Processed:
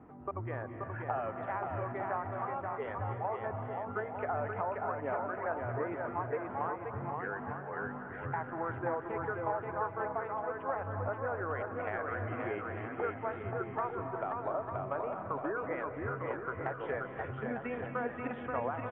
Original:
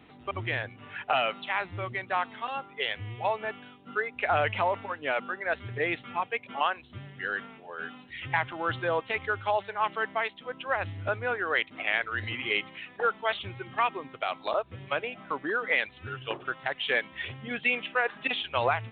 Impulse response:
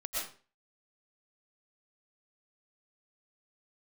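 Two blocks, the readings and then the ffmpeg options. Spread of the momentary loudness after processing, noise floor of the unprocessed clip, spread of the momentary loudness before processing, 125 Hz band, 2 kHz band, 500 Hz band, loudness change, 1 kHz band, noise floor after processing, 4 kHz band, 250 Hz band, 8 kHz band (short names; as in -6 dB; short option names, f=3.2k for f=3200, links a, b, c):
4 LU, -53 dBFS, 9 LU, -0.5 dB, -12.0 dB, -3.5 dB, -6.5 dB, -5.0 dB, -44 dBFS, under -25 dB, 0.0 dB, n/a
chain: -filter_complex "[0:a]lowpass=f=1.3k:w=0.5412,lowpass=f=1.3k:w=1.3066,acompressor=threshold=-37dB:ratio=3,aecho=1:1:530|901|1161|1342|1470:0.631|0.398|0.251|0.158|0.1,asplit=2[a][b];[1:a]atrim=start_sample=2205,asetrate=22491,aresample=44100[c];[b][c]afir=irnorm=-1:irlink=0,volume=-15.5dB[d];[a][d]amix=inputs=2:normalize=0"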